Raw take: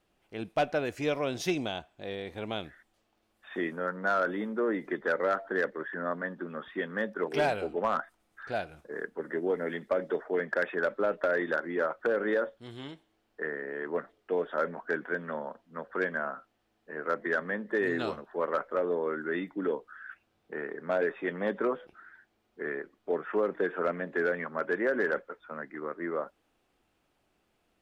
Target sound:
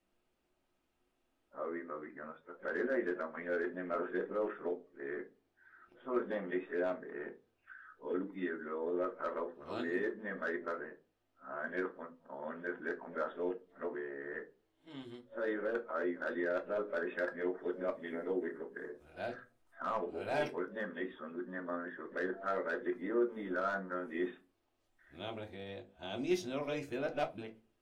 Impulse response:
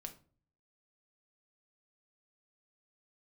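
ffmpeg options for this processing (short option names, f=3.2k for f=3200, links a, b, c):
-filter_complex "[0:a]areverse[a];[1:a]atrim=start_sample=2205,asetrate=74970,aresample=44100[b];[a][b]afir=irnorm=-1:irlink=0,volume=1dB"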